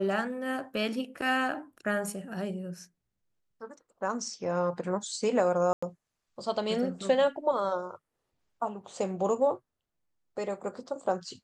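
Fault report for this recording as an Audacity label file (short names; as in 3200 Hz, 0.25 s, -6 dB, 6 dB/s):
5.730000	5.830000	gap 95 ms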